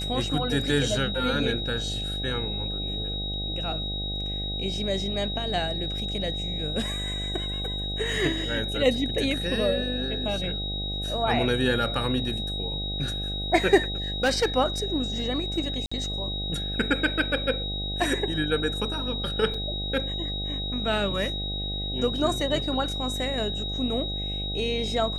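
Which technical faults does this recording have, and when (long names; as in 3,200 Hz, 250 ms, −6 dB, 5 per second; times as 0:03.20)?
mains buzz 50 Hz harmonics 16 −33 dBFS
whistle 3,800 Hz −31 dBFS
0:14.23–0:14.46: clipping −18 dBFS
0:15.86–0:15.91: drop-out 55 ms
0:19.54: drop-out 4 ms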